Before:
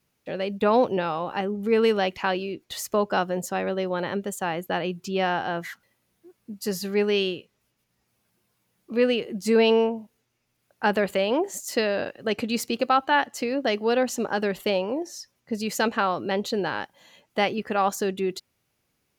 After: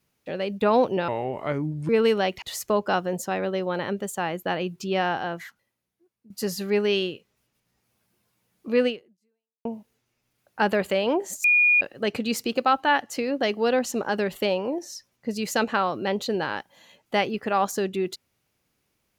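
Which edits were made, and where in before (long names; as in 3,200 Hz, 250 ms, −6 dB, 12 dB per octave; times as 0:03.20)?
0:01.08–0:01.68: play speed 74%
0:02.21–0:02.66: remove
0:05.40–0:06.54: fade out quadratic, to −17 dB
0:09.11–0:09.89: fade out exponential
0:11.68–0:12.05: beep over 2,440 Hz −15 dBFS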